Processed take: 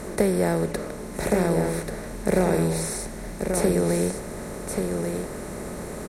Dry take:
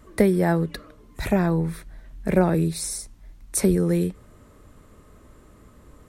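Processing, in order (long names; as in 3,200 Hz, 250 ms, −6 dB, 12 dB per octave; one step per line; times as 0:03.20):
compressor on every frequency bin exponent 0.4
dynamic equaliser 490 Hz, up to +4 dB, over −29 dBFS, Q 2.1
on a send: single-tap delay 1,136 ms −5.5 dB
on the sum: level −7 dB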